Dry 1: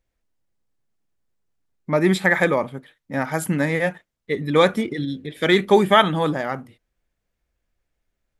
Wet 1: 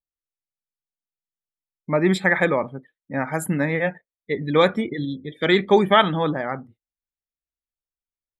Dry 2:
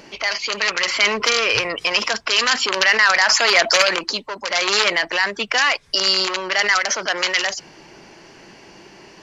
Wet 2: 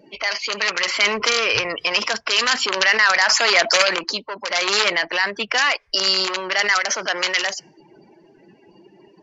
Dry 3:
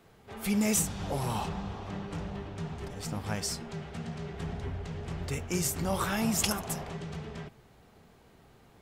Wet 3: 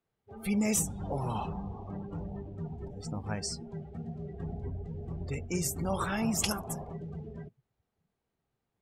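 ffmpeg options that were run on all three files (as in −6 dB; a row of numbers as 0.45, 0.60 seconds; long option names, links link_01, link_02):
-af "afftdn=noise_reduction=25:noise_floor=-39,volume=-1dB"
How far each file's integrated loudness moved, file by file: −1.0, −1.0, −1.5 LU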